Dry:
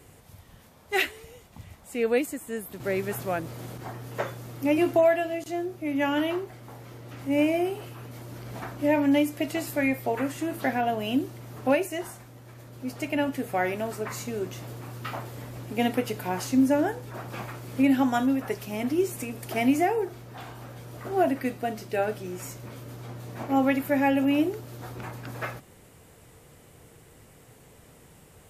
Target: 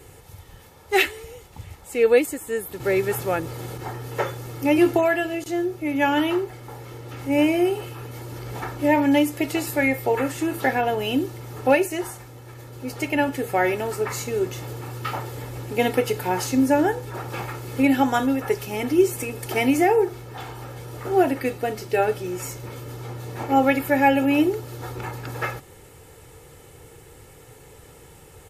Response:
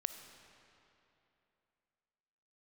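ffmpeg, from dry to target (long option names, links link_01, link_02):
-af "aecho=1:1:2.3:0.53,volume=5dB"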